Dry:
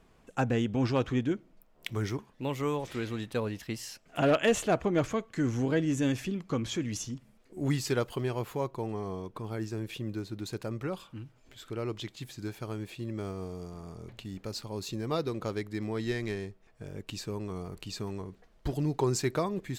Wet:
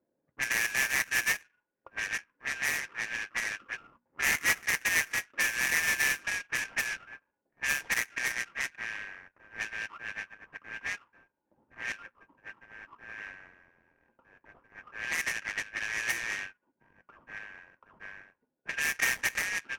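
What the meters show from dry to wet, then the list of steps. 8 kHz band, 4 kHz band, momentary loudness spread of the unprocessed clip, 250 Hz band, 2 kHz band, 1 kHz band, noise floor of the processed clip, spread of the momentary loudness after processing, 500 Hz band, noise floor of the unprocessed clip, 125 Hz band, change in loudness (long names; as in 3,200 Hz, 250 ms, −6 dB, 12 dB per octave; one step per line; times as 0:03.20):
+7.5 dB, +3.0 dB, 13 LU, −21.0 dB, +13.5 dB, −5.0 dB, −82 dBFS, 20 LU, −18.0 dB, −62 dBFS, −22.0 dB, +2.5 dB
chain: band-splitting scrambler in four parts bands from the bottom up 2143
elliptic low-pass filter 10,000 Hz
low shelf with overshoot 400 Hz +13.5 dB, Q 1.5
mains-hum notches 60/120/180/240 Hz
notch comb filter 750 Hz
in parallel at +2 dB: downward compressor 6 to 1, threshold −39 dBFS, peak gain reduction 20 dB
on the sum: hollow resonant body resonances 530/1,400 Hz, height 12 dB, ringing for 75 ms
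envelope filter 680–1,800 Hz, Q 5, up, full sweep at −26.5 dBFS
sample-rate reduction 4,100 Hz, jitter 20%
low-pass that shuts in the quiet parts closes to 550 Hz, open at −26.5 dBFS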